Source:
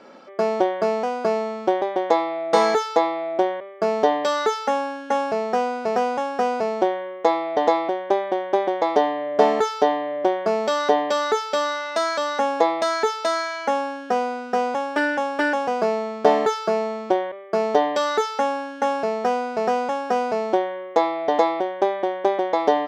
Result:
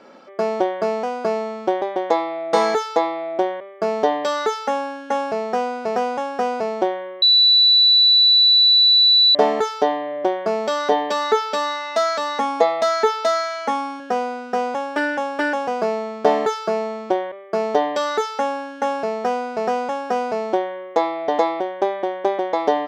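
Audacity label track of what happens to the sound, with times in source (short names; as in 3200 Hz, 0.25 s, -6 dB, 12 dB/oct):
7.220000	9.350000	bleep 3960 Hz -10 dBFS
10.910000	14.000000	comb 4.5 ms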